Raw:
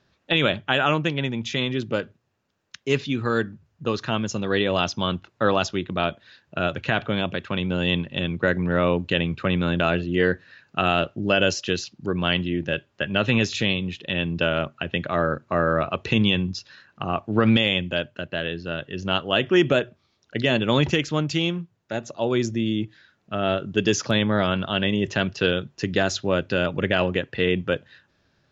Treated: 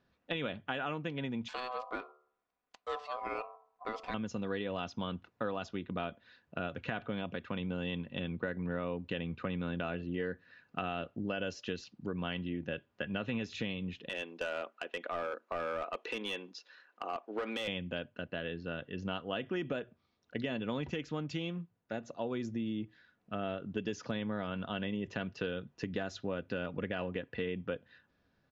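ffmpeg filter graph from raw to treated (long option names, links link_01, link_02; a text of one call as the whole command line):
ffmpeg -i in.wav -filter_complex "[0:a]asettb=1/sr,asplit=3[link_01][link_02][link_03];[link_01]atrim=end=1.484[link_04];[link_02]atrim=start=1.48:end=4.14,asetpts=PTS-STARTPTS,afade=type=in:duration=0.004:curve=qsin,afade=type=out:start_time=2.656:duration=0.004:curve=qsin,aeval=exprs='if(lt(val(0),0),0.708*val(0),val(0))':channel_layout=same,bandreject=frequency=72.9:width_type=h:width=4,bandreject=frequency=145.8:width_type=h:width=4,bandreject=frequency=218.7:width_type=h:width=4,bandreject=frequency=291.6:width_type=h:width=4,bandreject=frequency=364.5:width_type=h:width=4,bandreject=frequency=437.4:width_type=h:width=4,bandreject=frequency=510.3:width_type=h:width=4,aeval=exprs='val(0)*sin(2*PI*880*n/s)':channel_layout=same[link_05];[link_03]atrim=start=4.136[link_06];[link_04][link_05]acrossfade=duration=0.004:curve1=hsin:curve2=qsin[link_07];[link_07][link_06]acrossfade=duration=0.004:curve1=qsin:curve2=hsin,asettb=1/sr,asplit=3[link_08][link_09][link_10];[link_08]atrim=end=14.094[link_11];[link_09]atrim=start=14.09:end=17.68,asetpts=PTS-STARTPTS,afade=type=in:duration=0.004:curve=qsin,afade=type=out:start_time=3.586:duration=0.004:curve=qsin,highpass=frequency=360:width=0.5412,highpass=frequency=360:width=1.3066,asoftclip=type=hard:threshold=-19.5dB[link_12];[link_10]atrim=start=17.676[link_13];[link_11][link_12]acrossfade=duration=0.004:curve1=hsin:curve2=qsin[link_14];[link_14][link_13]acrossfade=duration=0.004:curve1=qsin:curve2=hsin,lowpass=frequency=2200:poles=1,aecho=1:1:4.1:0.33,acompressor=threshold=-26dB:ratio=4,volume=-7.5dB" out.wav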